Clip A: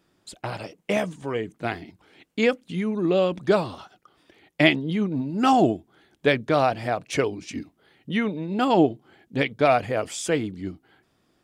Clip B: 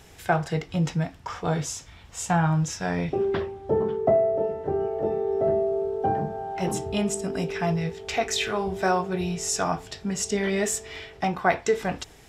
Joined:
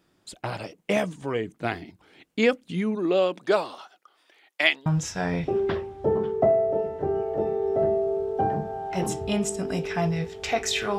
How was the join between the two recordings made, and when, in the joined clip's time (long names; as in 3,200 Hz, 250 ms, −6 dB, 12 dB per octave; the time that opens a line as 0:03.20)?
clip A
0:02.95–0:04.86: high-pass filter 260 Hz → 1,000 Hz
0:04.86: continue with clip B from 0:02.51